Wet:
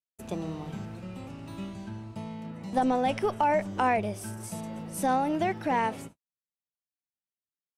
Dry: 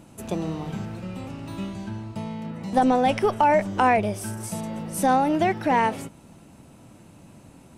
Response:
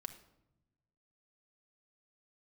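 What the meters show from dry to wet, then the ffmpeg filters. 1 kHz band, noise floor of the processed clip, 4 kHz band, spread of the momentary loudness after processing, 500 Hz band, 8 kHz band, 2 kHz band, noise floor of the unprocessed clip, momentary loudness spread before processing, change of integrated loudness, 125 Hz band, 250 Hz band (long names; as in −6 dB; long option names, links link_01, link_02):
−6.0 dB, below −85 dBFS, −6.0 dB, 14 LU, −6.0 dB, −6.0 dB, −6.0 dB, −50 dBFS, 14 LU, −6.0 dB, −6.0 dB, −6.0 dB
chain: -af "agate=range=-59dB:threshold=-39dB:ratio=16:detection=peak,volume=-6dB"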